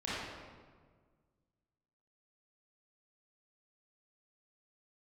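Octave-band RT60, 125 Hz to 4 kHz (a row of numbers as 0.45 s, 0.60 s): 2.2 s, 2.0 s, 1.7 s, 1.5 s, 1.2 s, 1.0 s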